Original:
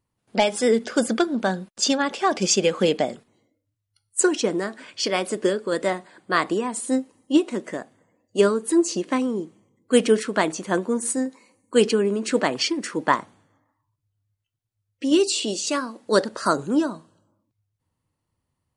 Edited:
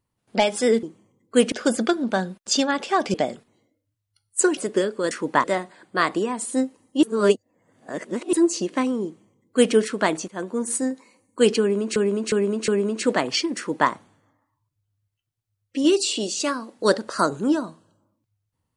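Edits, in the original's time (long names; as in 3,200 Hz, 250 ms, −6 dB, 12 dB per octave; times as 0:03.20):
0:02.45–0:02.94: remove
0:04.37–0:05.25: remove
0:07.38–0:08.68: reverse
0:09.40–0:10.09: duplicate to 0:00.83
0:10.63–0:11.03: fade in, from −16.5 dB
0:11.95–0:12.31: repeat, 4 plays
0:12.84–0:13.17: duplicate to 0:05.79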